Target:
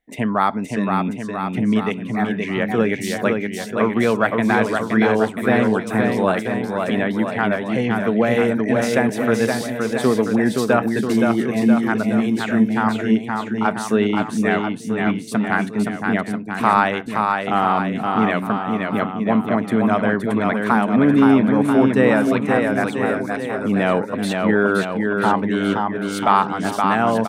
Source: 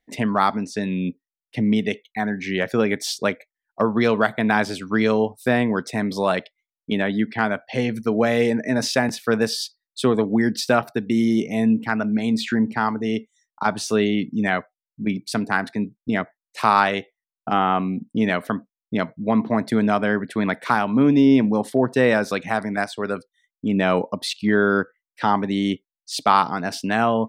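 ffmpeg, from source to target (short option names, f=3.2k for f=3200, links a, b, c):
-filter_complex "[0:a]equalizer=f=4.9k:w=1.9:g=-11.5,asplit=2[a][b];[b]aecho=0:1:520|988|1409|1788|2129:0.631|0.398|0.251|0.158|0.1[c];[a][c]amix=inputs=2:normalize=0,volume=1dB"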